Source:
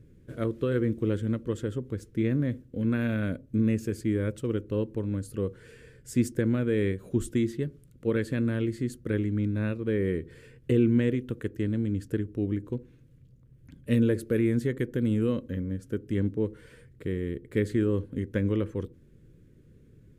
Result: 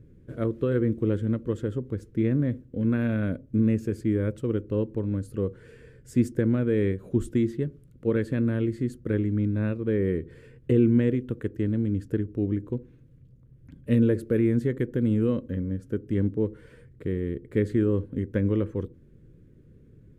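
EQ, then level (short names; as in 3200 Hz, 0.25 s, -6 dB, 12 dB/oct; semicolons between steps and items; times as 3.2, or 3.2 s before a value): high shelf 2100 Hz -9.5 dB; +2.5 dB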